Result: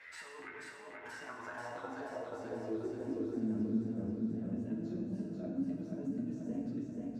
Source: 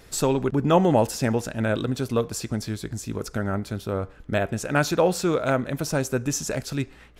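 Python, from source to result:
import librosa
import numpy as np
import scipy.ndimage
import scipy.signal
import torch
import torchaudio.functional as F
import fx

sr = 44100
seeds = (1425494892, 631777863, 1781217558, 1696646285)

p1 = fx.pitch_ramps(x, sr, semitones=2.0, every_ms=441)
p2 = fx.hum_notches(p1, sr, base_hz=50, count=8)
p3 = fx.over_compress(p2, sr, threshold_db=-28.0, ratio=-0.5)
p4 = fx.chorus_voices(p3, sr, voices=4, hz=0.28, base_ms=10, depth_ms=1.8, mix_pct=50)
p5 = fx.filter_sweep_bandpass(p4, sr, from_hz=2000.0, to_hz=220.0, start_s=0.75, end_s=3.59, q=5.2)
p6 = p5 + fx.echo_feedback(p5, sr, ms=484, feedback_pct=53, wet_db=-4, dry=0)
p7 = fx.rev_gated(p6, sr, seeds[0], gate_ms=300, shape='falling', drr_db=-0.5)
y = fx.band_squash(p7, sr, depth_pct=40)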